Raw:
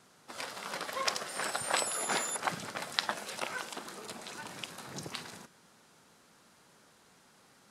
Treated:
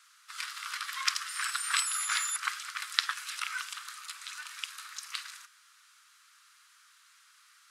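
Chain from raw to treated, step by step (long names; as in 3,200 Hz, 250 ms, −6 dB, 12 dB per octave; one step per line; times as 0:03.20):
elliptic high-pass filter 1,200 Hz, stop band 50 dB
level +4 dB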